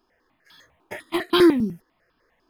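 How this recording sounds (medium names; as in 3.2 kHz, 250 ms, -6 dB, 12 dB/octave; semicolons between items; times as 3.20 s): tremolo saw up 1.1 Hz, depth 30%; notches that jump at a steady rate 10 Hz 530–2000 Hz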